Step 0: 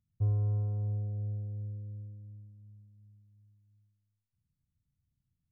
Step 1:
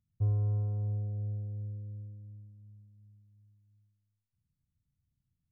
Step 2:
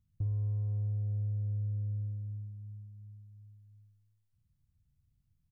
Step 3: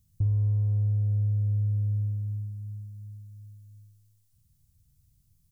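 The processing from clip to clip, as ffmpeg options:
-af anull
-filter_complex "[0:a]lowshelf=f=110:g=12,acompressor=threshold=-34dB:ratio=6,asplit=2[a][b];[b]aecho=0:1:20|50:0.178|0.299[c];[a][c]amix=inputs=2:normalize=0"
-af "bass=f=250:g=4,treble=f=4k:g=15,volume=4dB"

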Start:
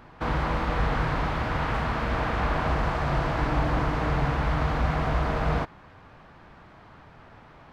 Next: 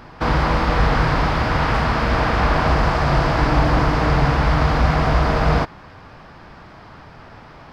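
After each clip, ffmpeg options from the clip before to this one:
-af "equalizer=f=5k:t=o:w=0.35:g=8.5,volume=8.5dB"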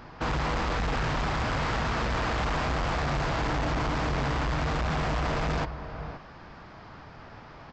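-filter_complex "[0:a]asplit=2[a][b];[b]adelay=524.8,volume=-16dB,highshelf=f=4k:g=-11.8[c];[a][c]amix=inputs=2:normalize=0,aresample=16000,asoftclip=type=hard:threshold=-21dB,aresample=44100,volume=-5dB"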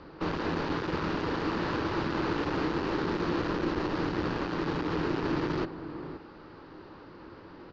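-af "highpass=f=160:w=0.5412,highpass=f=160:w=1.3066,equalizer=f=180:t=q:w=4:g=-7,equalizer=f=300:t=q:w=4:g=-10,equalizer=f=640:t=q:w=4:g=9,equalizer=f=1k:t=q:w=4:g=-9,equalizer=f=2.5k:t=q:w=4:g=-5,equalizer=f=3.7k:t=q:w=4:g=-4,lowpass=f=5.2k:w=0.5412,lowpass=f=5.2k:w=1.3066,afreqshift=-320"

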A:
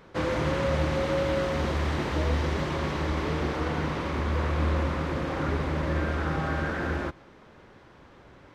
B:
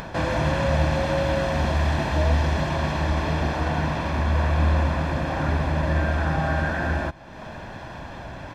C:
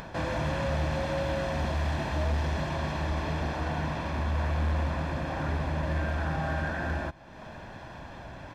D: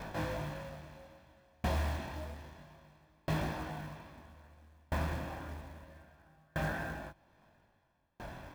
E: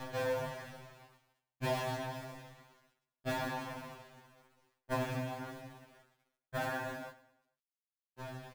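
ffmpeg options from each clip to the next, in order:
-af "equalizer=f=650:w=7.7:g=7.5,aecho=1:1:1.2:0.54,acompressor=mode=upward:threshold=-28dB:ratio=2.5,volume=3dB"
-af "volume=17dB,asoftclip=hard,volume=-17dB,volume=-6.5dB"
-af "flanger=delay=19:depth=4.6:speed=0.29,acrusher=bits=5:mode=log:mix=0:aa=0.000001,aeval=exprs='val(0)*pow(10,-38*if(lt(mod(0.61*n/s,1),2*abs(0.61)/1000),1-mod(0.61*n/s,1)/(2*abs(0.61)/1000),(mod(0.61*n/s,1)-2*abs(0.61)/1000)/(1-2*abs(0.61)/1000))/20)':c=same,volume=2.5dB"
-af "aeval=exprs='sgn(val(0))*max(abs(val(0))-0.0015,0)':c=same,aecho=1:1:111|222|333|444:0.133|0.0613|0.0282|0.013,afftfilt=real='re*2.45*eq(mod(b,6),0)':imag='im*2.45*eq(mod(b,6),0)':win_size=2048:overlap=0.75,volume=4.5dB"

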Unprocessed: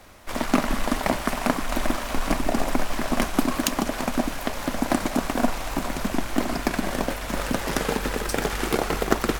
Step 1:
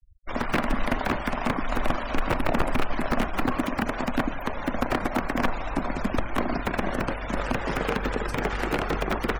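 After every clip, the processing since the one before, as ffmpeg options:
-filter_complex "[0:a]aeval=exprs='(mod(4.73*val(0)+1,2)-1)/4.73':c=same,afftfilt=real='re*gte(hypot(re,im),0.0224)':imag='im*gte(hypot(re,im),0.0224)':win_size=1024:overlap=0.75,acrossover=split=2800[a][b];[b]acompressor=threshold=-42dB:ratio=4:attack=1:release=60[c];[a][c]amix=inputs=2:normalize=0"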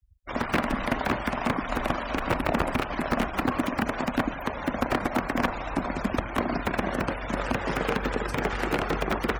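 -af "highpass=44"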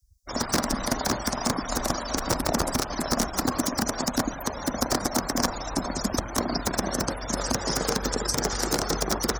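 -af "highshelf=f=3.9k:t=q:w=3:g=13.5"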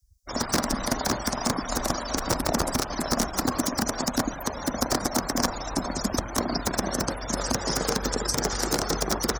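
-filter_complex "[0:a]asplit=2[a][b];[b]adelay=758,volume=-28dB,highshelf=f=4k:g=-17.1[c];[a][c]amix=inputs=2:normalize=0"

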